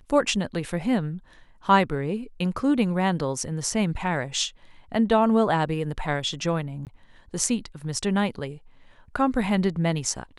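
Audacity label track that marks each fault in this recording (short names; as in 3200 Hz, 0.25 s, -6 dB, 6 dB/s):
6.850000	6.870000	gap 18 ms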